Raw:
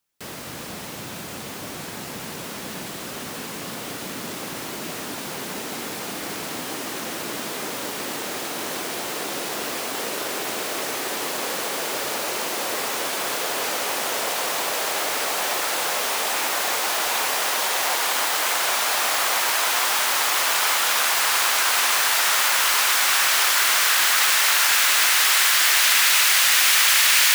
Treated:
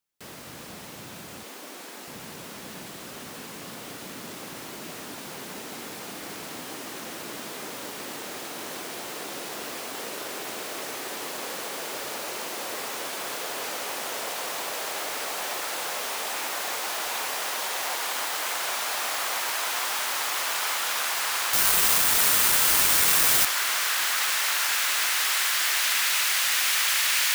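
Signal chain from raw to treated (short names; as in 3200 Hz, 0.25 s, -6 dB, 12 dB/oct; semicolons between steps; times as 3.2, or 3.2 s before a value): 1.43–2.08 HPF 250 Hz 24 dB/oct; 21.53–23.45 careless resampling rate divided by 4×, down none, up zero stuff; gain -7 dB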